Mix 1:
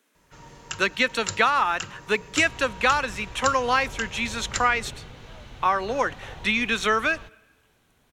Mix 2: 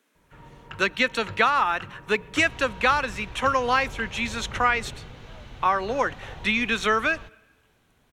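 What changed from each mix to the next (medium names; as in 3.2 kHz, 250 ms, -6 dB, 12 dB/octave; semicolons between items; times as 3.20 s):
first sound: add distance through air 480 m; master: add tone controls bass +1 dB, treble -3 dB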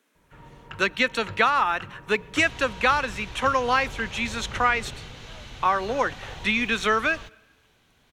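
second sound: add treble shelf 2.4 kHz +11.5 dB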